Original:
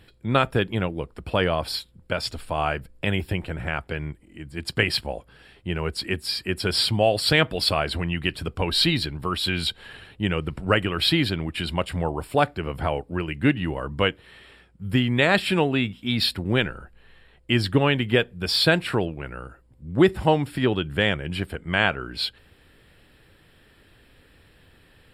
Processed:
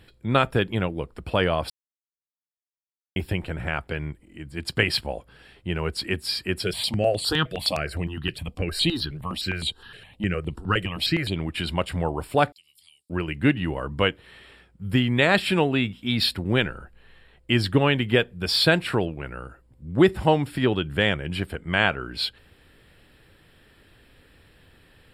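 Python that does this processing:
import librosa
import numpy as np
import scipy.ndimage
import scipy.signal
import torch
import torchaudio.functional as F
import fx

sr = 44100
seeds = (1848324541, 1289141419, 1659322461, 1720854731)

y = fx.phaser_held(x, sr, hz=9.7, low_hz=250.0, high_hz=5300.0, at=(6.63, 11.36))
y = fx.cheby2_highpass(y, sr, hz=1600.0, order=4, stop_db=50, at=(12.52, 13.1))
y = fx.edit(y, sr, fx.silence(start_s=1.7, length_s=1.46), tone=tone)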